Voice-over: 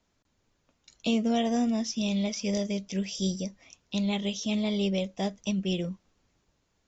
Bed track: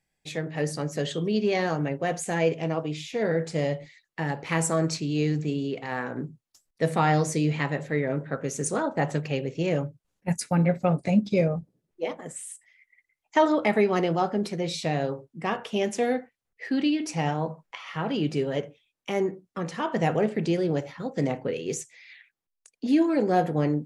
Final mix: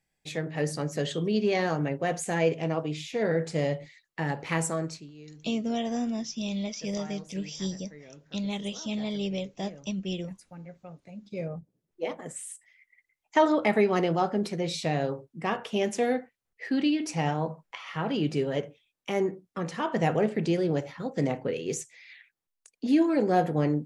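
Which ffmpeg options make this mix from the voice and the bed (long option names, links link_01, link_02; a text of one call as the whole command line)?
ffmpeg -i stem1.wav -i stem2.wav -filter_complex "[0:a]adelay=4400,volume=-3.5dB[link_01];[1:a]volume=20.5dB,afade=type=out:start_time=4.46:duration=0.66:silence=0.0841395,afade=type=in:start_time=11.19:duration=0.96:silence=0.0841395[link_02];[link_01][link_02]amix=inputs=2:normalize=0" out.wav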